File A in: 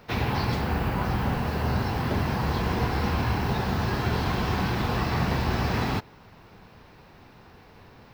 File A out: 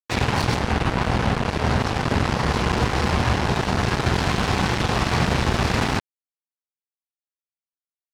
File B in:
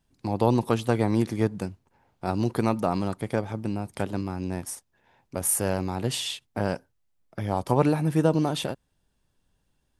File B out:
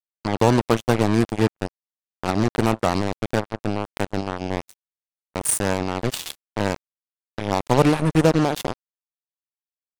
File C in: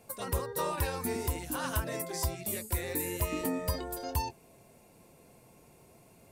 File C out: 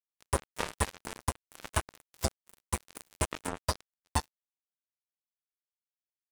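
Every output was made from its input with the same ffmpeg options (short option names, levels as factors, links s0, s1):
-af "aresample=22050,aresample=44100,acrusher=bits=3:mix=0:aa=0.5,volume=1.68"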